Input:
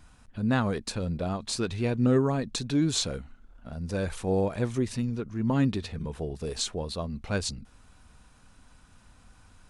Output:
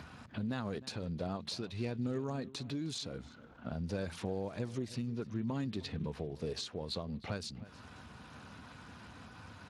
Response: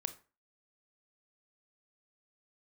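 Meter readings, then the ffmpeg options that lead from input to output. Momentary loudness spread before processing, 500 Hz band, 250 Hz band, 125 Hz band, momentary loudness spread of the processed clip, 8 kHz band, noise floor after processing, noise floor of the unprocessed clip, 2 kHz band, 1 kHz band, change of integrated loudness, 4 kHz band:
10 LU, -10.0 dB, -10.5 dB, -10.0 dB, 15 LU, -14.5 dB, -55 dBFS, -57 dBFS, -10.0 dB, -10.0 dB, -10.5 dB, -8.5 dB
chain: -filter_complex "[0:a]highpass=f=68:p=1,highshelf=f=8.6k:g=-11,acrossover=split=4800[a][b];[a]acompressor=threshold=-39dB:ratio=6[c];[c][b]amix=inputs=2:normalize=0,alimiter=level_in=7dB:limit=-24dB:level=0:latency=1:release=305,volume=-7dB,acompressor=mode=upward:threshold=-45dB:ratio=2.5,asplit=2[d][e];[e]adelay=309,volume=-17dB,highshelf=f=4k:g=-6.95[f];[d][f]amix=inputs=2:normalize=0,volume=3.5dB" -ar 32000 -c:a libspeex -b:a 24k

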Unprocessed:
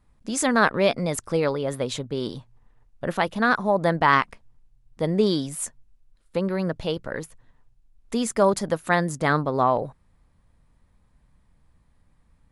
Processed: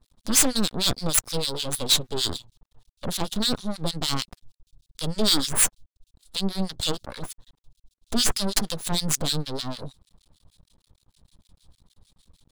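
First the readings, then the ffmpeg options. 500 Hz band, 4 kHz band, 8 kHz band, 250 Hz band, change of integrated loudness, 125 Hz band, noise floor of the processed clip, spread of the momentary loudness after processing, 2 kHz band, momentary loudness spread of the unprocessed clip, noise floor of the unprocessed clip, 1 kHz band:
-10.0 dB, +10.5 dB, +10.0 dB, -3.5 dB, -0.5 dB, -3.0 dB, under -85 dBFS, 14 LU, -10.0 dB, 13 LU, -63 dBFS, -11.5 dB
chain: -filter_complex "[0:a]acontrast=33,highshelf=f=2.7k:t=q:w=3:g=11.5,acrossover=split=340|3000[a][b][c];[b]acompressor=threshold=-29dB:ratio=6[d];[a][d][c]amix=inputs=3:normalize=0,aeval=exprs='max(val(0),0)':c=same,acrossover=split=1600[e][f];[e]aeval=exprs='val(0)*(1-1/2+1/2*cos(2*PI*6.5*n/s))':c=same[g];[f]aeval=exprs='val(0)*(1-1/2-1/2*cos(2*PI*6.5*n/s))':c=same[h];[g][h]amix=inputs=2:normalize=0,volume=16dB,asoftclip=hard,volume=-16dB,volume=3dB"

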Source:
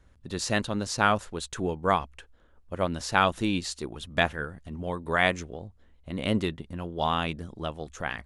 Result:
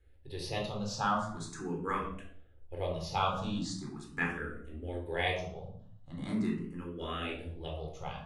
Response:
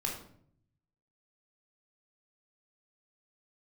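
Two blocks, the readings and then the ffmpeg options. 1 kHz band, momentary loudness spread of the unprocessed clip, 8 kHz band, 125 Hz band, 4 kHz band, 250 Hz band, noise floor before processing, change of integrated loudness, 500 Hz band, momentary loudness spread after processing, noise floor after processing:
-7.5 dB, 13 LU, -10.0 dB, -5.5 dB, -8.0 dB, -6.0 dB, -59 dBFS, -7.5 dB, -8.0 dB, 13 LU, -55 dBFS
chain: -filter_complex "[1:a]atrim=start_sample=2205[a];[0:a][a]afir=irnorm=-1:irlink=0,asplit=2[b][c];[c]afreqshift=0.41[d];[b][d]amix=inputs=2:normalize=1,volume=-8dB"

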